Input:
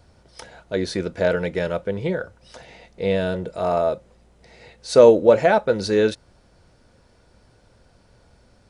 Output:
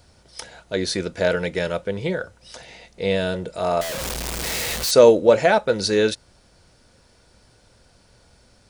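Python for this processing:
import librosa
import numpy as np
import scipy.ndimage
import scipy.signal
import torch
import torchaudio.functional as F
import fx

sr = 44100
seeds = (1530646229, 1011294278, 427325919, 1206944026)

y = fx.clip_1bit(x, sr, at=(3.81, 4.91))
y = fx.high_shelf(y, sr, hz=2500.0, db=9.5)
y = y * librosa.db_to_amplitude(-1.0)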